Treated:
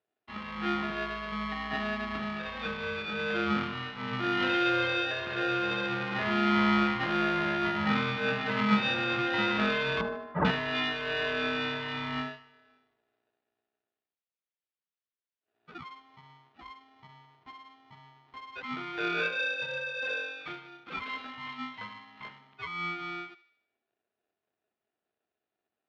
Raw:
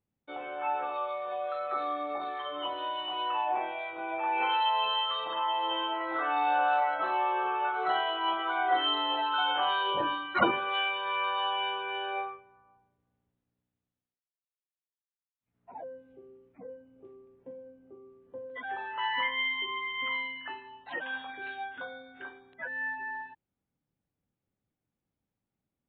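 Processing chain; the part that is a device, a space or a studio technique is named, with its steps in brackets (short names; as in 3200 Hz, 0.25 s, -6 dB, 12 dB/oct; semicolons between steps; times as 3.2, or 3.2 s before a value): ring modulator pedal into a guitar cabinet (polarity switched at an audio rate 530 Hz; speaker cabinet 92–3800 Hz, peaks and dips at 150 Hz -4 dB, 280 Hz -4 dB, 860 Hz -4 dB); 10.01–10.45 Chebyshev low-pass 1200 Hz, order 3; dynamic EQ 170 Hz, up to +7 dB, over -49 dBFS, Q 0.91; thinning echo 76 ms, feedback 52%, high-pass 770 Hz, level -16 dB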